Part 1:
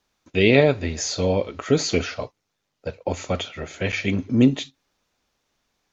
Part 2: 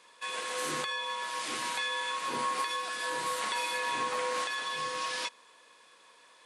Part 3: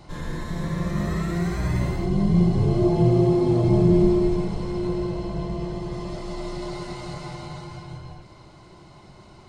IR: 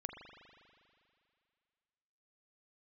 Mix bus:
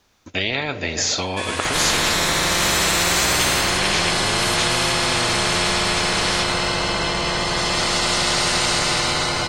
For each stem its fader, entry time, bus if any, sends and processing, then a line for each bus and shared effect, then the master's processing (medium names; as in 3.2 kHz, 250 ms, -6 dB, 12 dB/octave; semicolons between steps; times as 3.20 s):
-14.5 dB, 0.00 s, send -13 dB, compression, threshold -20 dBFS, peak gain reduction 10.5 dB
-16.0 dB, 1.15 s, send -5.5 dB, none
+0.5 dB, 1.65 s, send -8.5 dB, none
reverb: on, RT60 2.4 s, pre-delay 40 ms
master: peaking EQ 91 Hz +9 dB 0.24 oct; spectrum-flattening compressor 10:1